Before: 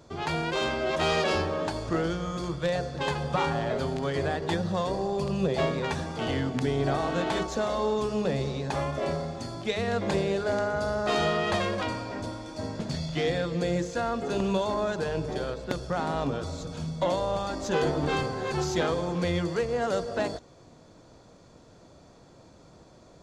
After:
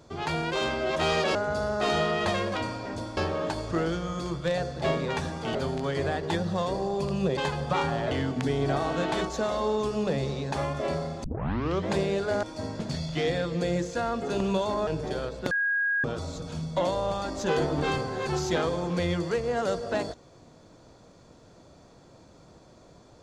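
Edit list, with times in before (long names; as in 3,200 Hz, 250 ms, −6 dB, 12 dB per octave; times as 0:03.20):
0:03.00–0:03.74: swap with 0:05.56–0:06.29
0:09.42: tape start 0.65 s
0:10.61–0:12.43: move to 0:01.35
0:14.87–0:15.12: remove
0:15.76–0:16.29: beep over 1,640 Hz −23 dBFS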